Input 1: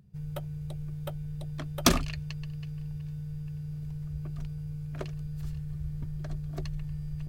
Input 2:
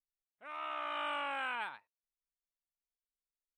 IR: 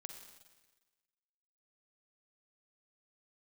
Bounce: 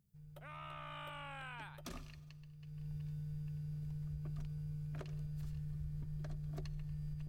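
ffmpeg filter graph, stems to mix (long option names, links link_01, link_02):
-filter_complex "[0:a]volume=-9dB,afade=type=in:start_time=2.58:duration=0.35:silence=0.251189,asplit=2[link_01][link_02];[link_02]volume=-6.5dB[link_03];[1:a]highshelf=frequency=5500:gain=11,acompressor=threshold=-53dB:ratio=2,volume=-1.5dB[link_04];[2:a]atrim=start_sample=2205[link_05];[link_03][link_05]afir=irnorm=-1:irlink=0[link_06];[link_01][link_04][link_06]amix=inputs=3:normalize=0,alimiter=level_in=11.5dB:limit=-24dB:level=0:latency=1:release=120,volume=-11.5dB"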